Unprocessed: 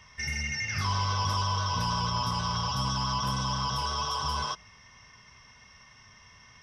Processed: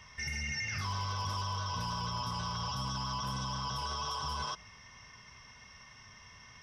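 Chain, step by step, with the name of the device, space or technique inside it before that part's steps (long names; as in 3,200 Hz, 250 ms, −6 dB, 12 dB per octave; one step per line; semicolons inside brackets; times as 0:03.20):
clipper into limiter (hard clipping −21 dBFS, distortion −31 dB; brickwall limiter −28.5 dBFS, peak gain reduction 7.5 dB)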